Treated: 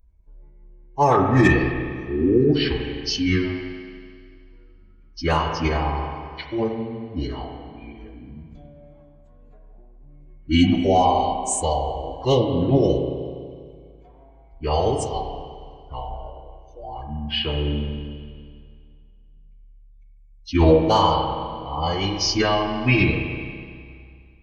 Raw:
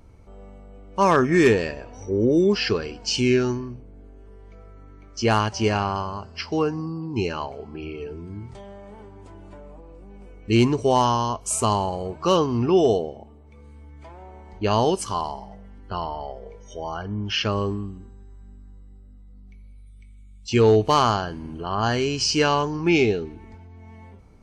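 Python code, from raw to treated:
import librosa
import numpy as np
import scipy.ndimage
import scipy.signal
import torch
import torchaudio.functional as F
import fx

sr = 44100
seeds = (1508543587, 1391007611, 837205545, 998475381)

y = fx.bin_expand(x, sr, power=1.5)
y = fx.pitch_keep_formants(y, sr, semitones=-5.5)
y = fx.rev_spring(y, sr, rt60_s=2.1, pass_ms=(31, 41), chirp_ms=70, drr_db=3.0)
y = y * 10.0 ** (3.0 / 20.0)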